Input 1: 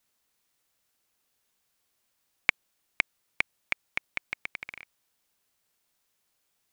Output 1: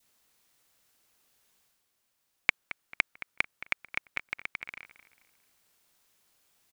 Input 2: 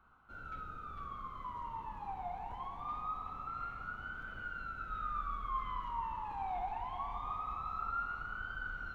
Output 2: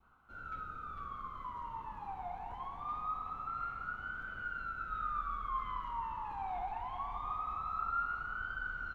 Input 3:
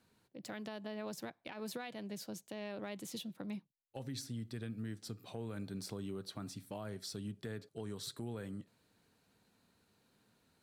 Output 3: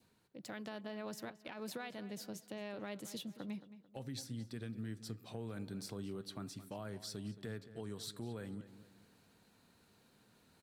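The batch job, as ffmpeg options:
-filter_complex "[0:a]areverse,acompressor=mode=upward:threshold=0.00112:ratio=2.5,areverse,asplit=2[s0][s1];[s1]adelay=221,lowpass=f=3600:p=1,volume=0.2,asplit=2[s2][s3];[s3]adelay=221,lowpass=f=3600:p=1,volume=0.39,asplit=2[s4][s5];[s5]adelay=221,lowpass=f=3600:p=1,volume=0.39,asplit=2[s6][s7];[s7]adelay=221,lowpass=f=3600:p=1,volume=0.39[s8];[s0][s2][s4][s6][s8]amix=inputs=5:normalize=0,adynamicequalizer=threshold=0.00251:dfrequency=1400:dqfactor=2.1:tfrequency=1400:tqfactor=2.1:attack=5:release=100:ratio=0.375:range=2:mode=boostabove:tftype=bell,volume=0.841"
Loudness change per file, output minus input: -1.5 LU, +1.0 LU, -1.0 LU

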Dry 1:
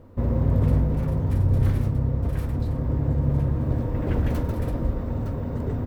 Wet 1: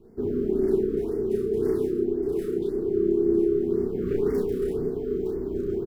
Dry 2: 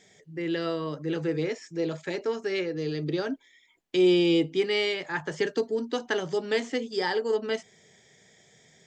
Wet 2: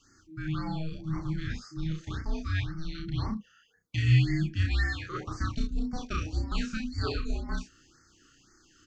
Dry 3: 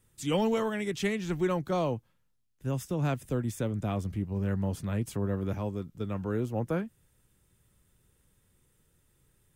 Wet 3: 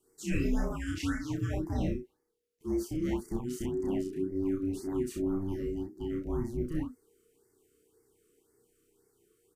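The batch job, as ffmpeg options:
-af "afreqshift=-480,aecho=1:1:32.07|64.14:0.891|0.501,afftfilt=real='re*(1-between(b*sr/1024,760*pow(3200/760,0.5+0.5*sin(2*PI*1.9*pts/sr))/1.41,760*pow(3200/760,0.5+0.5*sin(2*PI*1.9*pts/sr))*1.41))':imag='im*(1-between(b*sr/1024,760*pow(3200/760,0.5+0.5*sin(2*PI*1.9*pts/sr))/1.41,760*pow(3200/760,0.5+0.5*sin(2*PI*1.9*pts/sr))*1.41))':win_size=1024:overlap=0.75,volume=0.562"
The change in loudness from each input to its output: -1.0 LU, -4.0 LU, -2.5 LU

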